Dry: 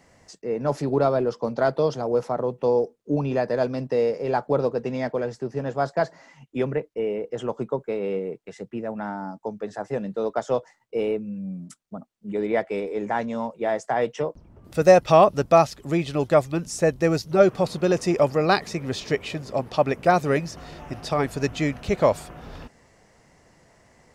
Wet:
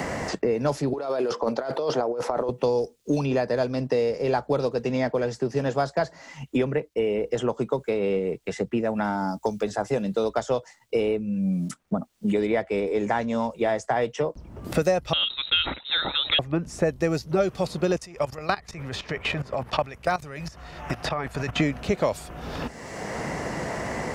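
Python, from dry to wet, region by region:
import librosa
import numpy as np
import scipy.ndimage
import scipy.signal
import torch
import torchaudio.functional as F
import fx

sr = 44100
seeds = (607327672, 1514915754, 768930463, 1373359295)

y = fx.chain(x, sr, fx.highpass(hz=340.0, slope=12),
    fx.over_compress(threshold_db=-31.0, ratio=-1.0), at=(0.93, 2.49))
y = fx.chain(y, sr, fx.high_shelf(hz=9400.0, db=6.0),
    fx.notch(hz=1800.0, q=13.0), at=(9.04, 10.29))
y = fx.chain(y, sr, fx.freq_invert(carrier_hz=3900),
    fx.sustainer(db_per_s=140.0), at=(15.13, 16.39))
y = fx.chain(y, sr, fx.level_steps(step_db=18),
    fx.peak_eq(hz=310.0, db=-11.0, octaves=2.4), at=(17.96, 21.6))
y = fx.peak_eq(y, sr, hz=61.0, db=10.0, octaves=0.54)
y = fx.band_squash(y, sr, depth_pct=100)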